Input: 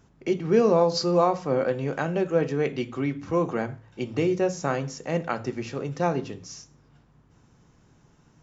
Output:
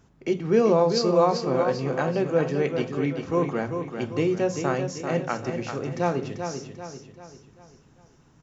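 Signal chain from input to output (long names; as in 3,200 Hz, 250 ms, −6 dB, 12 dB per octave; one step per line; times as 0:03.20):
repeating echo 391 ms, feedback 44%, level −7 dB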